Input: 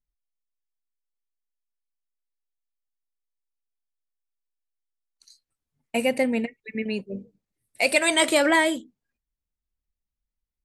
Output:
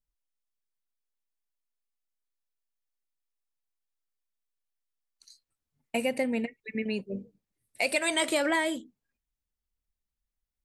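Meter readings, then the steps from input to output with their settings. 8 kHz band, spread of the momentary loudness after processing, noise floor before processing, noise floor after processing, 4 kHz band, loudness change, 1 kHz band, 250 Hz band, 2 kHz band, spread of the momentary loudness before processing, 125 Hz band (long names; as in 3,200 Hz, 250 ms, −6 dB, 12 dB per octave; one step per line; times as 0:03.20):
−6.5 dB, 10 LU, below −85 dBFS, below −85 dBFS, −6.5 dB, −6.5 dB, −7.0 dB, −5.5 dB, −6.5 dB, 14 LU, −3.0 dB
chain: downward compressor 2 to 1, threshold −26 dBFS, peak gain reduction 6.5 dB
level −1.5 dB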